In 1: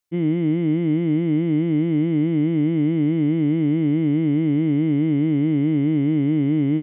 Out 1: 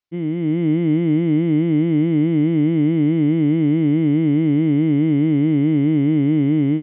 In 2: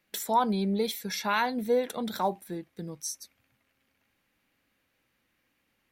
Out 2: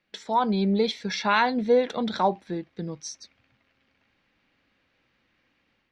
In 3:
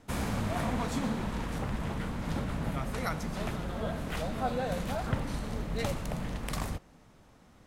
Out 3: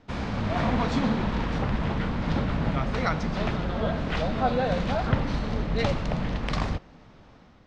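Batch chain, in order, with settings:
low-pass 5.1 kHz 24 dB/octave; level rider gain up to 6 dB; peak normalisation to -9 dBFS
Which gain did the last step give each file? -3.0 dB, -0.5 dB, +1.0 dB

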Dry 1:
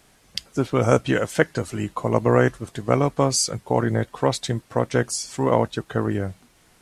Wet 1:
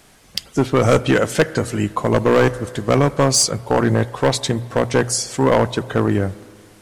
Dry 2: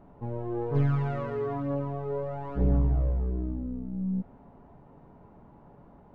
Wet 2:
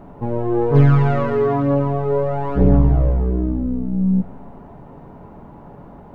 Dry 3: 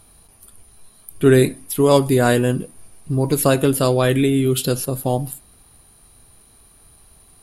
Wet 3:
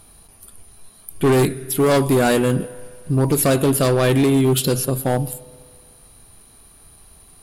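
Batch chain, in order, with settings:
hum notches 60/120 Hz; spring tank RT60 2 s, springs 34/38 ms, chirp 65 ms, DRR 19 dB; hard clipper -14.5 dBFS; normalise loudness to -18 LUFS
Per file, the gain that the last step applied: +6.5 dB, +13.5 dB, +2.5 dB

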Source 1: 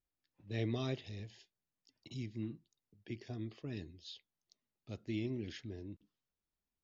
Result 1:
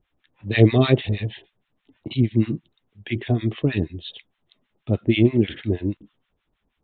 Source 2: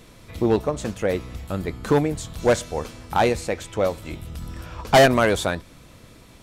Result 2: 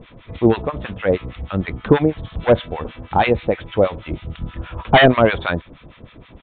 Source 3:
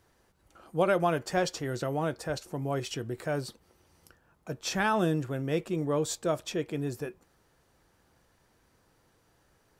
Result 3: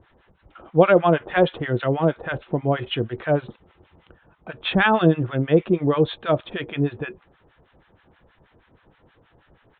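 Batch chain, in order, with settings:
harmonic tremolo 6.3 Hz, depth 100%, crossover 940 Hz; resampled via 8 kHz; peak normalisation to -1.5 dBFS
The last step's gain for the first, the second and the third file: +25.5 dB, +9.5 dB, +14.0 dB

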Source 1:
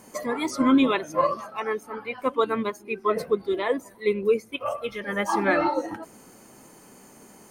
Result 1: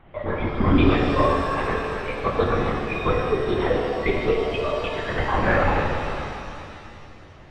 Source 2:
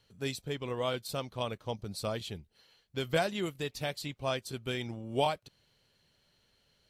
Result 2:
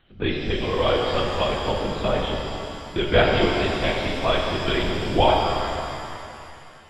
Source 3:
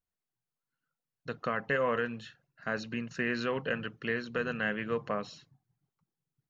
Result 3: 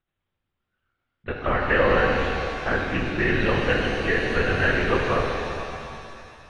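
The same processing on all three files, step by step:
LPC vocoder at 8 kHz whisper; pitch-shifted reverb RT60 2.6 s, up +7 st, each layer -8 dB, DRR -0.5 dB; normalise loudness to -23 LUFS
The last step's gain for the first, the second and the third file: 0.0 dB, +10.0 dB, +8.0 dB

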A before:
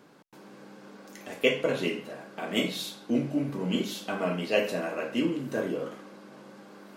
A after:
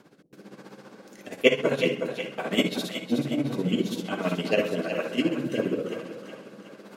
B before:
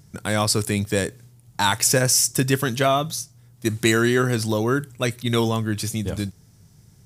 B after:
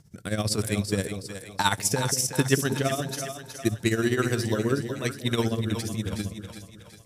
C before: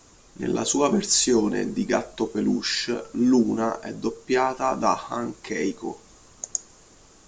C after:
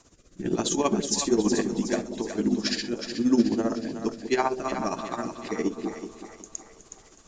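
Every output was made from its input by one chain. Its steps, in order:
tremolo 15 Hz, depth 74%; rotary cabinet horn 1.1 Hz; two-band feedback delay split 520 Hz, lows 187 ms, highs 368 ms, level -8 dB; normalise loudness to -27 LUFS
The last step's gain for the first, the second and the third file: +7.0 dB, 0.0 dB, +1.5 dB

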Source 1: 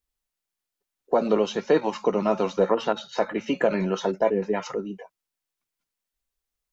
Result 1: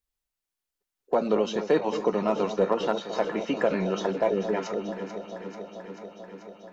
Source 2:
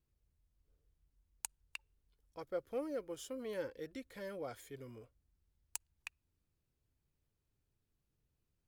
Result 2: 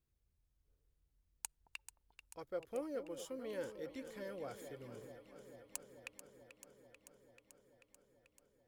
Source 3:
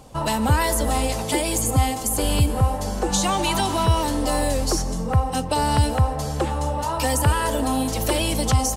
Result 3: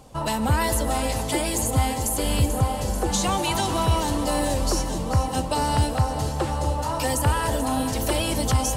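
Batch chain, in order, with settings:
hard clipper -10.5 dBFS; on a send: echo whose repeats swap between lows and highs 219 ms, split 810 Hz, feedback 86%, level -10 dB; on the sum: trim -2.5 dB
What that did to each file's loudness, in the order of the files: -2.5 LU, -2.0 LU, -2.0 LU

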